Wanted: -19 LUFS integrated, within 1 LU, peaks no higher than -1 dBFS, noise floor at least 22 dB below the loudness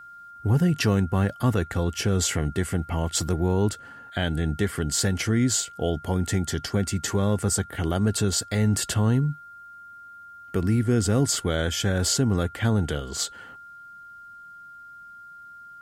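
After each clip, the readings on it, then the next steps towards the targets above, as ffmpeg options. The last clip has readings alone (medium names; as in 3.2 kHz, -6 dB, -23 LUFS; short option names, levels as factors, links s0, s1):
steady tone 1.4 kHz; tone level -42 dBFS; loudness -24.5 LUFS; peak level -11.0 dBFS; loudness target -19.0 LUFS
-> -af "bandreject=f=1400:w=30"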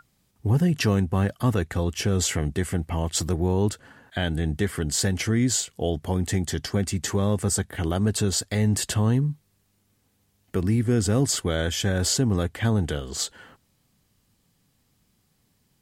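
steady tone not found; loudness -25.0 LUFS; peak level -11.0 dBFS; loudness target -19.0 LUFS
-> -af "volume=2"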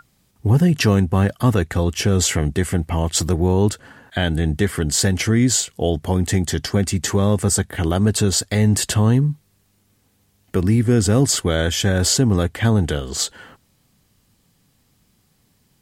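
loudness -19.0 LUFS; peak level -5.0 dBFS; noise floor -62 dBFS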